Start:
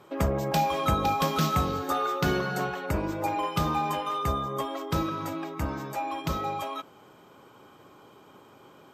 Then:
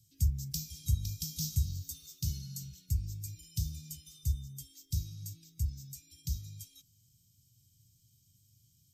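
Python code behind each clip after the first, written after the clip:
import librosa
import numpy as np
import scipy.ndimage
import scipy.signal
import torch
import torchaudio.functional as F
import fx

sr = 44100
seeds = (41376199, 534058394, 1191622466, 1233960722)

y = scipy.signal.sosfilt(scipy.signal.cheby1(3, 1.0, [110.0, 5500.0], 'bandstop', fs=sr, output='sos'), x)
y = y * librosa.db_to_amplitude(1.5)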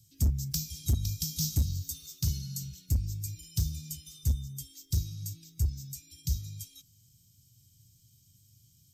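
y = np.clip(x, -10.0 ** (-25.5 / 20.0), 10.0 ** (-25.5 / 20.0))
y = y * librosa.db_to_amplitude(5.0)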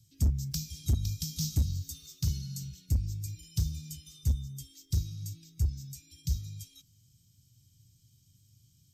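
y = fx.high_shelf(x, sr, hz=7600.0, db=-8.5)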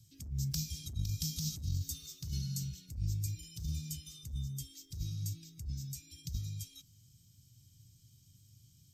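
y = fx.over_compress(x, sr, threshold_db=-34.0, ratio=-1.0)
y = y * librosa.db_to_amplitude(-2.5)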